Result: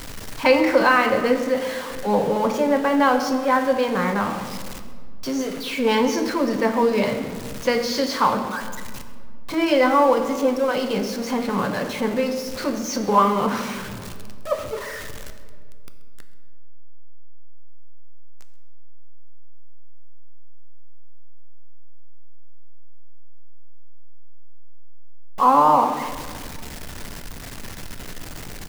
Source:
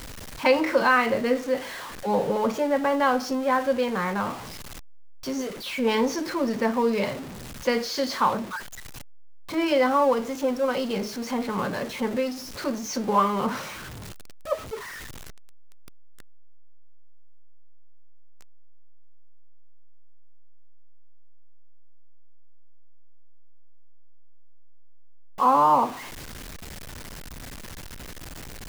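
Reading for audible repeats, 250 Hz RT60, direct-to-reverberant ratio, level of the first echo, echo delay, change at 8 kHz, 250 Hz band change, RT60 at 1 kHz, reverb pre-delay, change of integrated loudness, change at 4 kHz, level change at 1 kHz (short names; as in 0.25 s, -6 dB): 1, 2.8 s, 7.0 dB, -19.5 dB, 0.131 s, +4.0 dB, +4.5 dB, 1.7 s, 3 ms, +4.0 dB, +4.0 dB, +4.0 dB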